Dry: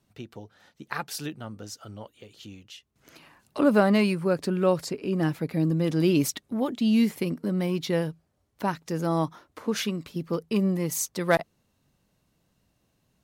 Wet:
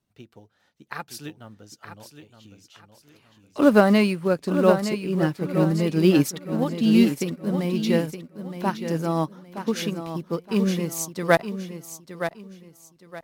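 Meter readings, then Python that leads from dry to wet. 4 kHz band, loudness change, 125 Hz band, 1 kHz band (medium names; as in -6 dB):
+2.0 dB, +3.5 dB, +2.5 dB, +3.5 dB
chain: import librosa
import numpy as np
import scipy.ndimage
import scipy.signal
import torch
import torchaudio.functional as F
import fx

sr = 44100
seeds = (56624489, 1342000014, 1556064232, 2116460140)

p1 = fx.quant_float(x, sr, bits=2)
p2 = x + (p1 * librosa.db_to_amplitude(-10.5))
p3 = fx.echo_feedback(p2, sr, ms=918, feedback_pct=42, wet_db=-6.5)
p4 = fx.upward_expand(p3, sr, threshold_db=-41.0, expansion=1.5)
y = p4 * librosa.db_to_amplitude(3.0)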